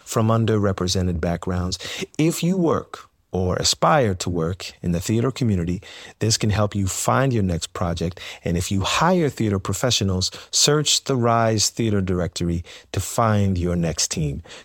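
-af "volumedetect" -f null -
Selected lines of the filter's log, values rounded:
mean_volume: -21.3 dB
max_volume: -2.7 dB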